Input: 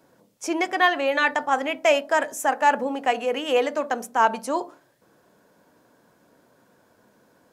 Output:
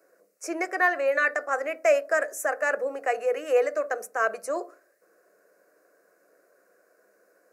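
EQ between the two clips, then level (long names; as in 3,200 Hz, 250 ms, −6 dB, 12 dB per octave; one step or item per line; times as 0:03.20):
Chebyshev high-pass filter 220 Hz, order 4
phaser with its sweep stopped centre 900 Hz, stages 6
0.0 dB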